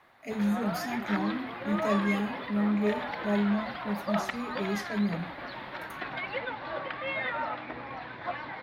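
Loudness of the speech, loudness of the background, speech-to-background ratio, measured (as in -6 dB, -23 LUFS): -31.5 LUFS, -35.5 LUFS, 4.0 dB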